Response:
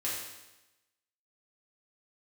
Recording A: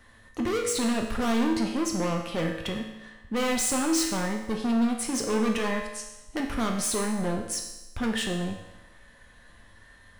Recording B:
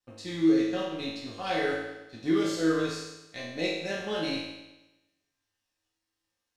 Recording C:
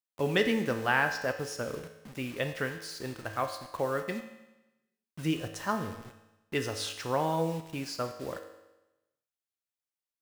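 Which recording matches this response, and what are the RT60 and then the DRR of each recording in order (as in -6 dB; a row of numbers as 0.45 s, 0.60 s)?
B; 1.0 s, 1.0 s, 1.0 s; 1.0 dB, -7.5 dB, 5.5 dB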